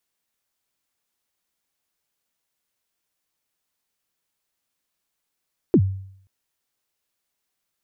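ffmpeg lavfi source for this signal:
-f lavfi -i "aevalsrc='0.355*pow(10,-3*t/0.65)*sin(2*PI*(420*0.065/log(96/420)*(exp(log(96/420)*min(t,0.065)/0.065)-1)+96*max(t-0.065,0)))':d=0.53:s=44100"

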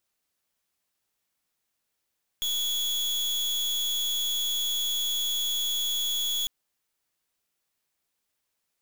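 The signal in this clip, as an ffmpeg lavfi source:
-f lavfi -i "aevalsrc='0.0398*(2*lt(mod(3370*t,1),0.38)-1)':d=4.05:s=44100"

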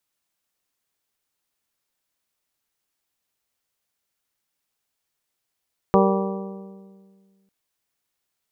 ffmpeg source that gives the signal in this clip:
-f lavfi -i "aevalsrc='0.15*pow(10,-3*t/1.95)*sin(2*PI*194*t)+0.133*pow(10,-3*t/1.584)*sin(2*PI*388*t)+0.119*pow(10,-3*t/1.5)*sin(2*PI*465.6*t)+0.106*pow(10,-3*t/1.402)*sin(2*PI*582*t)+0.0944*pow(10,-3*t/1.287)*sin(2*PI*776*t)+0.0841*pow(10,-3*t/1.203)*sin(2*PI*970*t)+0.075*pow(10,-3*t/1.139)*sin(2*PI*1164*t)':d=1.55:s=44100"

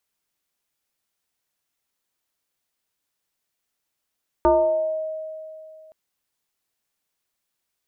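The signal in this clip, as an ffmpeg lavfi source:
-f lavfi -i "aevalsrc='0.251*pow(10,-3*t/2.63)*sin(2*PI*630*t+1.5*pow(10,-3*t/0.94)*sin(2*PI*0.45*630*t))':d=1.47:s=44100"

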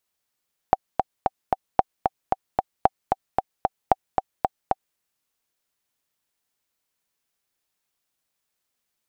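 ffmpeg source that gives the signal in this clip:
-f lavfi -i "aevalsrc='pow(10,(-1.5-4.5*gte(mod(t,4*60/226),60/226))/20)*sin(2*PI*766*mod(t,60/226))*exp(-6.91*mod(t,60/226)/0.03)':d=4.24:s=44100"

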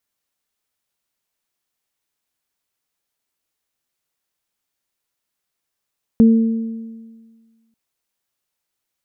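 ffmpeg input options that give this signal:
-f lavfi -i "aevalsrc='0.531*pow(10,-3*t/1.62)*sin(2*PI*226*t)+0.119*pow(10,-3*t/1.3)*sin(2*PI*452*t)':d=1.54:s=44100"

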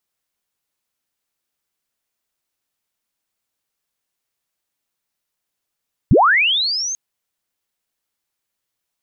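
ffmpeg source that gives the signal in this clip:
-f lavfi -i "aevalsrc='pow(10,(-7-14.5*t/0.84)/20)*sin(2*PI*(68*t+6432*t*t/(2*0.84)))':d=0.84:s=44100"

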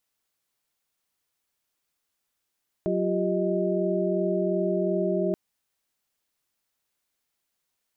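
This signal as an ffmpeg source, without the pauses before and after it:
-f lavfi -i "aevalsrc='0.0398*(sin(2*PI*185*t)+sin(2*PI*349.23*t)+sin(2*PI*392*t)+sin(2*PI*622.25*t))':d=2.48:s=44100"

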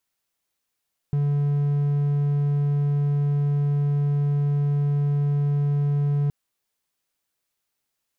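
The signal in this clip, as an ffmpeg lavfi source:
-f lavfi -i "aevalsrc='0.141*(1-4*abs(mod(144*t+0.25,1)-0.5))':d=5.17:s=44100"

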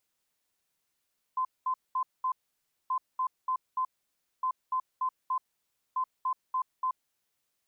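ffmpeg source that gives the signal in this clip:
-f lavfi -i "aevalsrc='0.0501*sin(2*PI*1030*t)*clip(min(mod(mod(t,1.53),0.29),0.08-mod(mod(t,1.53),0.29))/0.005,0,1)*lt(mod(t,1.53),1.16)':d=6.12:s=44100"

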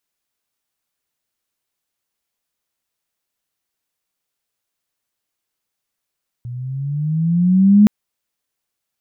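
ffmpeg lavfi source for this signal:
-f lavfi -i "aevalsrc='pow(10,(-5+21*(t/1.42-1))/20)*sin(2*PI*119*1.42/(10*log(2)/12)*(exp(10*log(2)/12*t/1.42)-1))':d=1.42:s=44100"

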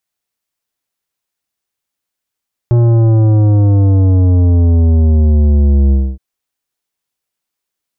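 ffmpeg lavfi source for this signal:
-f lavfi -i "aevalsrc='0.422*clip((3.47-t)/0.26,0,1)*tanh(3.76*sin(2*PI*120*3.47/log(65/120)*(exp(log(65/120)*t/3.47)-1)))/tanh(3.76)':d=3.47:s=44100"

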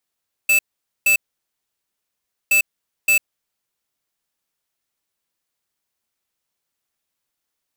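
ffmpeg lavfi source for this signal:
-f lavfi -i "aevalsrc='0.188*(2*lt(mod(2630*t,1),0.5)-1)*clip(min(mod(mod(t,2.02),0.57),0.1-mod(mod(t,2.02),0.57))/0.005,0,1)*lt(mod(t,2.02),1.14)':d=4.04:s=44100"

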